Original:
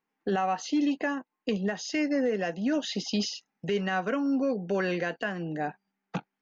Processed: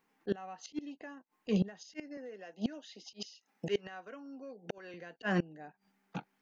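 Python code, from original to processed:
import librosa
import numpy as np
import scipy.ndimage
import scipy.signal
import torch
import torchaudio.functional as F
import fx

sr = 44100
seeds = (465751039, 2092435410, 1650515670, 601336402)

y = fx.highpass(x, sr, hz=290.0, slope=12, at=(2.17, 4.94))
y = fx.auto_swell(y, sr, attack_ms=158.0)
y = fx.gate_flip(y, sr, shuts_db=-28.0, range_db=-26)
y = F.gain(torch.from_numpy(y), 8.0).numpy()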